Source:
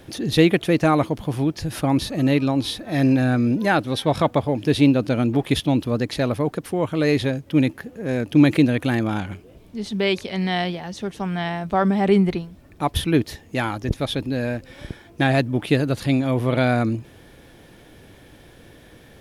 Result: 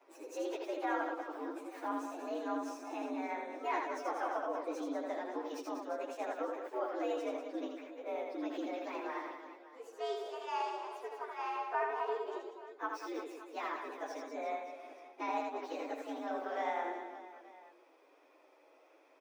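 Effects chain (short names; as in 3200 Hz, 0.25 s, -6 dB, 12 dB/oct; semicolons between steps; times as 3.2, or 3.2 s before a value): inharmonic rescaling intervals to 118%; limiter -15 dBFS, peak gain reduction 10 dB; Chebyshev high-pass 270 Hz, order 8; three-band isolator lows -14 dB, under 490 Hz, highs -16 dB, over 2000 Hz; reverse bouncing-ball echo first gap 80 ms, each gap 1.4×, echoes 5; gain -7 dB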